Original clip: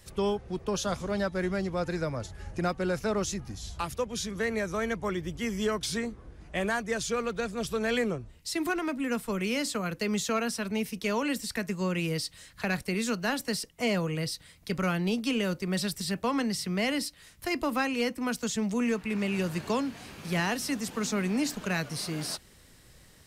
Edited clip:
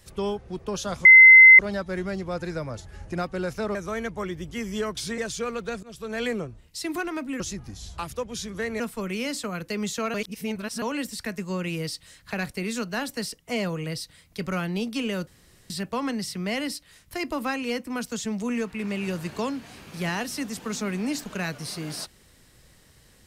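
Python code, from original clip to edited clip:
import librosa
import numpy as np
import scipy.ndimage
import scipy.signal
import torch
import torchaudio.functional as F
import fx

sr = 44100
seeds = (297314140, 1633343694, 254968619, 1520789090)

y = fx.edit(x, sr, fx.insert_tone(at_s=1.05, length_s=0.54, hz=2060.0, db=-6.5),
    fx.move(start_s=3.21, length_s=1.4, to_s=9.11),
    fx.cut(start_s=6.04, length_s=0.85),
    fx.fade_in_from(start_s=7.54, length_s=0.42, floor_db=-17.5),
    fx.reverse_span(start_s=10.45, length_s=0.68),
    fx.room_tone_fill(start_s=15.58, length_s=0.43), tone=tone)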